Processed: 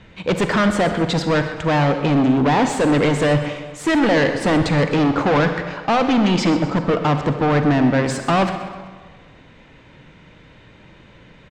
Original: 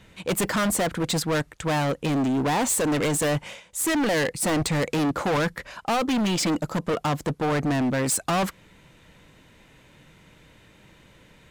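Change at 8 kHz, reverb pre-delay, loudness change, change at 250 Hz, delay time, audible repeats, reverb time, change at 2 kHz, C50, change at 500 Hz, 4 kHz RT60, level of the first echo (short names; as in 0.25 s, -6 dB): -7.0 dB, 37 ms, +6.5 dB, +7.5 dB, 0.128 s, 4, 1.4 s, +6.5 dB, 7.5 dB, +7.5 dB, 1.0 s, -14.5 dB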